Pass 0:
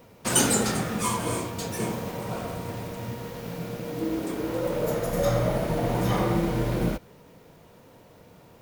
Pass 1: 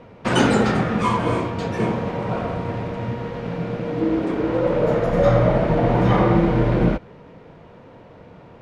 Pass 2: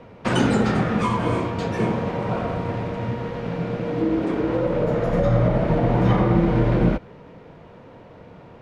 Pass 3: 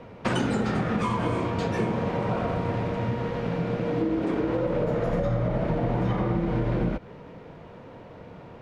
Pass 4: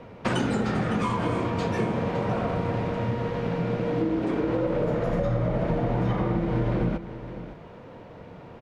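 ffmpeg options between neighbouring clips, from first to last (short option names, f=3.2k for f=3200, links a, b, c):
-af "lowpass=2.5k,volume=8dB"
-filter_complex "[0:a]acrossover=split=290[a][b];[b]acompressor=threshold=-21dB:ratio=5[c];[a][c]amix=inputs=2:normalize=0"
-af "acompressor=threshold=-22dB:ratio=6"
-af "aecho=1:1:560:0.224"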